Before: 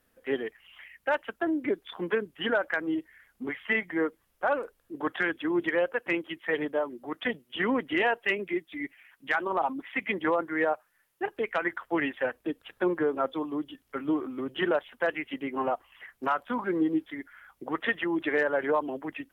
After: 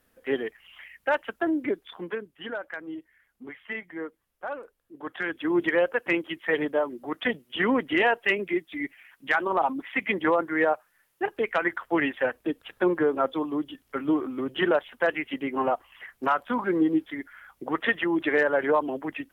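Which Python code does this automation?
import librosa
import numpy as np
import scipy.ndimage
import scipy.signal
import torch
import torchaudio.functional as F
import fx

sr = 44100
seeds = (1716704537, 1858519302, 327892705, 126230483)

y = fx.gain(x, sr, db=fx.line((1.57, 2.5), (2.35, -7.5), (4.99, -7.5), (5.53, 3.5)))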